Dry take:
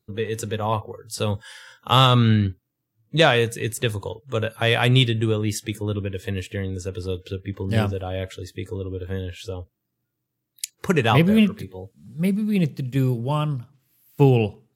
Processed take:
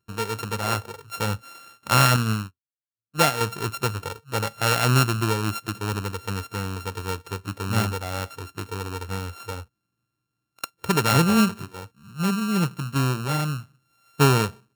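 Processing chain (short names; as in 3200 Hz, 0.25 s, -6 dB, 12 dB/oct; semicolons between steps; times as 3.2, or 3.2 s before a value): sample sorter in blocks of 32 samples; 2.16–3.41 upward expander 2.5:1, over -35 dBFS; gain -2 dB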